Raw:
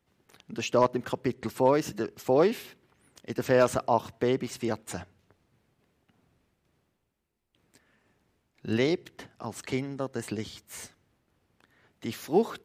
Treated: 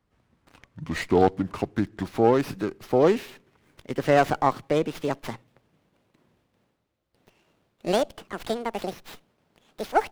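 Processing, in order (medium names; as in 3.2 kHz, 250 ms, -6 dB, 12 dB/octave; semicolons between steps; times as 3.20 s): gliding tape speed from 59% -> 191%; sliding maximum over 5 samples; trim +3 dB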